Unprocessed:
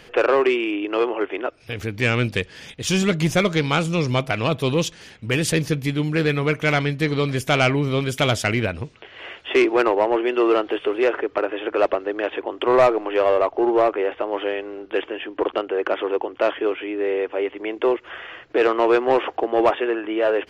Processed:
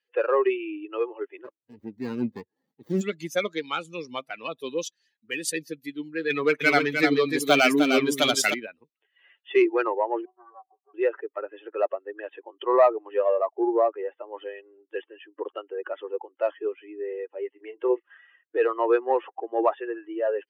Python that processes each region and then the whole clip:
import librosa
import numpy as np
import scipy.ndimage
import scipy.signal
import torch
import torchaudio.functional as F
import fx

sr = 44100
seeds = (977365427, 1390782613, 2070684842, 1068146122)

y = fx.chain(x, sr, fx.low_shelf(hz=330.0, db=12.0),
    fx.running_max(window=33), at=(1.44, 3.01))
y = fx.chain(y, sr, fx.leveller(passes=2),
    fx.echo_single(ms=305, db=-3.0), at=(6.3, 8.54))
y = fx.chain(y, sr, fx.formant_cascade(vowel='a'),
    fx.comb(ms=5.2, depth=0.97),
    fx.doppler_dist(depth_ms=0.18), at=(10.25, 10.94))
y = fx.chain(y, sr, fx.lowpass(hz=8500.0, slope=12),
    fx.doubler(ms=32.0, db=-7.0),
    fx.resample_bad(factor=6, down='none', up='filtered'), at=(17.51, 18.18))
y = fx.bin_expand(y, sr, power=2.0)
y = scipy.signal.sosfilt(scipy.signal.butter(4, 250.0, 'highpass', fs=sr, output='sos'), y)
y = fx.notch(y, sr, hz=2800.0, q=27.0)